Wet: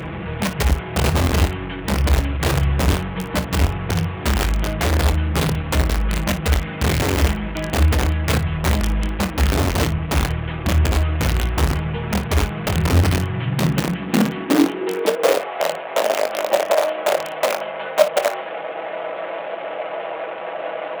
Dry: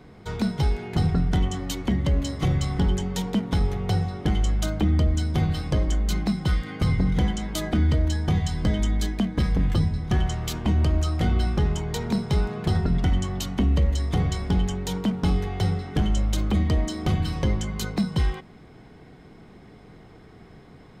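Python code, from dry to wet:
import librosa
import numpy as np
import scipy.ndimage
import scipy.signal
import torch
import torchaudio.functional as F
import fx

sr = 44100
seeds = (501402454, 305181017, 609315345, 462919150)

p1 = fx.delta_mod(x, sr, bps=16000, step_db=-25.5)
p2 = p1 + 0.59 * np.pad(p1, (int(6.1 * sr / 1000.0), 0))[:len(p1)]
p3 = (np.mod(10.0 ** (15.5 / 20.0) * p2 + 1.0, 2.0) - 1.0) / 10.0 ** (15.5 / 20.0)
p4 = fx.filter_sweep_highpass(p3, sr, from_hz=69.0, to_hz=600.0, start_s=12.74, end_s=15.5, q=6.3)
y = p4 + fx.room_early_taps(p4, sr, ms=(24, 57), db=(-10.5, -13.5), dry=0)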